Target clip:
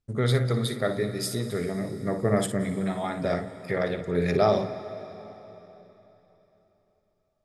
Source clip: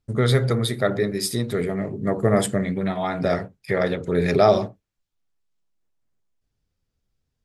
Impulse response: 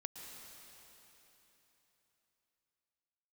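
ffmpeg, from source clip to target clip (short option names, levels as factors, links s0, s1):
-filter_complex "[0:a]asplit=2[s0][s1];[1:a]atrim=start_sample=2205,adelay=57[s2];[s1][s2]afir=irnorm=-1:irlink=0,volume=0.531[s3];[s0][s3]amix=inputs=2:normalize=0,volume=0.531"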